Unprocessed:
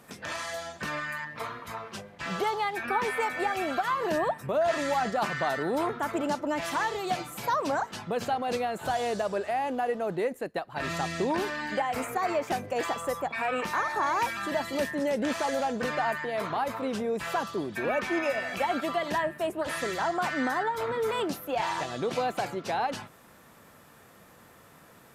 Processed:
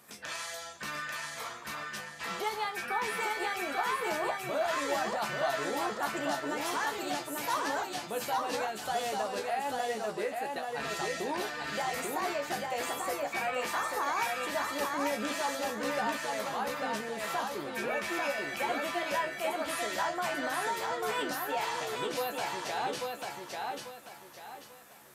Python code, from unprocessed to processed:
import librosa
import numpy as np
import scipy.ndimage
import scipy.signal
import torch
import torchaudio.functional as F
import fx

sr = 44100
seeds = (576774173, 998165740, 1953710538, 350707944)

y = fx.tilt_eq(x, sr, slope=2.0)
y = fx.comb_fb(y, sr, f0_hz=71.0, decay_s=0.16, harmonics='all', damping=0.0, mix_pct=90)
y = fx.echo_feedback(y, sr, ms=841, feedback_pct=32, wet_db=-3.0)